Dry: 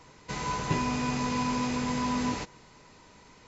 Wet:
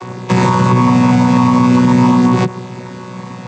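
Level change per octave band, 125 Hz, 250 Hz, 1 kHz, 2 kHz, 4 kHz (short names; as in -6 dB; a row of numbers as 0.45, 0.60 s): +22.5, +21.0, +16.5, +13.0, +9.5 dB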